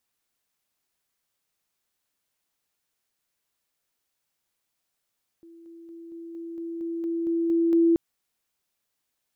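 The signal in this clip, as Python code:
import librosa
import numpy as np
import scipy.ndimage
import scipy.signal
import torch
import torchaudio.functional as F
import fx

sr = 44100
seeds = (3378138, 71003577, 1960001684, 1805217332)

y = fx.level_ladder(sr, hz=334.0, from_db=-46.0, step_db=3.0, steps=11, dwell_s=0.23, gap_s=0.0)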